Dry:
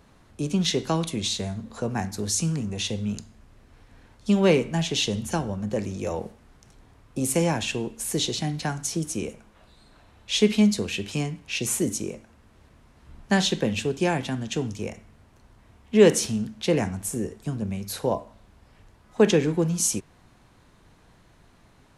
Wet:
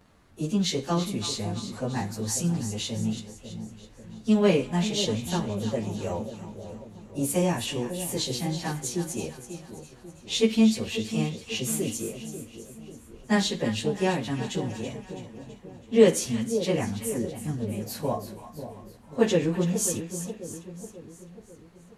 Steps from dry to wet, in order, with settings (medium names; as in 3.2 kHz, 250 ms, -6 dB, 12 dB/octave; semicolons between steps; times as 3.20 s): frequency-domain pitch shifter +1 st; two-band feedback delay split 810 Hz, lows 541 ms, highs 329 ms, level -10.5 dB